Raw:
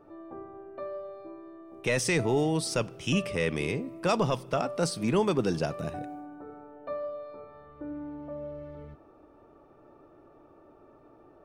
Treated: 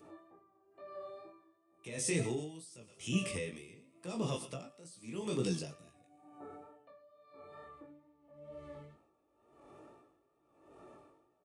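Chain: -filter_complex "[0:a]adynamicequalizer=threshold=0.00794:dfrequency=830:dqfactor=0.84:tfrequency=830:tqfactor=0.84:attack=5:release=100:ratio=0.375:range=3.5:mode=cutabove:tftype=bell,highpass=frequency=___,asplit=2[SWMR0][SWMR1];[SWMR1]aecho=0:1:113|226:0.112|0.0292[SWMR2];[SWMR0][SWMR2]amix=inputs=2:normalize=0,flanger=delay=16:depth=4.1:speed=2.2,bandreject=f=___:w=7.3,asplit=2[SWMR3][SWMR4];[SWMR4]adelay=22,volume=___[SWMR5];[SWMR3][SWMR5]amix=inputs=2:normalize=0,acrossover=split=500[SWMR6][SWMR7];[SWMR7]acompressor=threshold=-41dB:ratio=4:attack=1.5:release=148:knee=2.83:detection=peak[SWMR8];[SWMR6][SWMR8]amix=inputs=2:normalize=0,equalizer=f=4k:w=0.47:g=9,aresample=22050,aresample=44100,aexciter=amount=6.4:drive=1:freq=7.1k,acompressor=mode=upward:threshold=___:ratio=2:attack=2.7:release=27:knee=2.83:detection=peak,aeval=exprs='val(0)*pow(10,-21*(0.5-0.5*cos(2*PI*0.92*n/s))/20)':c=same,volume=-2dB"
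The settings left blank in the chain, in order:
62, 1.5k, -8dB, -47dB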